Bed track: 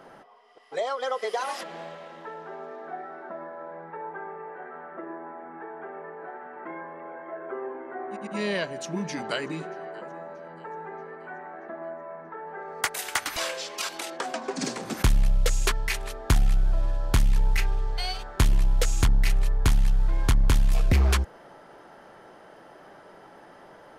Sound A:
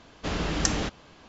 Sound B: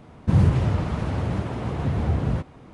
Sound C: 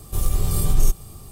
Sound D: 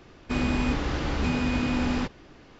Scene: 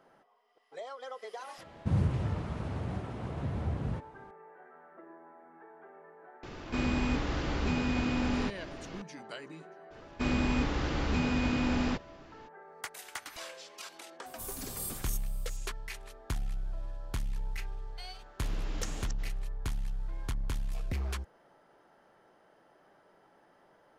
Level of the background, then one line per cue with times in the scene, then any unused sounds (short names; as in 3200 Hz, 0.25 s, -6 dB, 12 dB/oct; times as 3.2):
bed track -14 dB
1.58 add B -10.5 dB
6.43 add D -4.5 dB + upward compressor, threshold -28 dBFS
9.9 add D -3.5 dB, fades 0.02 s
14.26 add C -16.5 dB + tilt +2.5 dB/oct
18.18 add A -15.5 dB + reverse delay 0.158 s, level -7 dB